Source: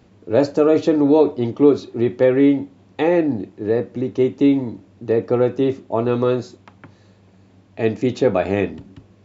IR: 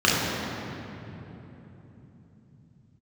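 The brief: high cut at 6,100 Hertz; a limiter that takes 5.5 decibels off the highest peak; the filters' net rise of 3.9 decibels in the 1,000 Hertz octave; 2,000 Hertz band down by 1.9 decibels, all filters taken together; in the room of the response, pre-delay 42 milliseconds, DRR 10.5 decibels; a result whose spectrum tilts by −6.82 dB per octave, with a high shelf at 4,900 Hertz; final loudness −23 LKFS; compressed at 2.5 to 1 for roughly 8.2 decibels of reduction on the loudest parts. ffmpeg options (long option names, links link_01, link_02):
-filter_complex "[0:a]lowpass=6100,equalizer=frequency=1000:width_type=o:gain=6,equalizer=frequency=2000:width_type=o:gain=-4.5,highshelf=frequency=4900:gain=4,acompressor=threshold=-20dB:ratio=2.5,alimiter=limit=-15dB:level=0:latency=1,asplit=2[link_01][link_02];[1:a]atrim=start_sample=2205,adelay=42[link_03];[link_02][link_03]afir=irnorm=-1:irlink=0,volume=-31dB[link_04];[link_01][link_04]amix=inputs=2:normalize=0,volume=2.5dB"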